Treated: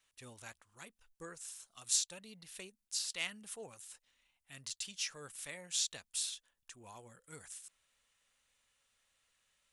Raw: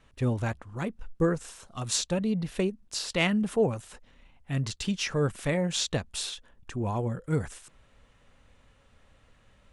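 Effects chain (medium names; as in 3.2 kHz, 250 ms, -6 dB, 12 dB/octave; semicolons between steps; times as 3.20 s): pre-emphasis filter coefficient 0.97; trim -1.5 dB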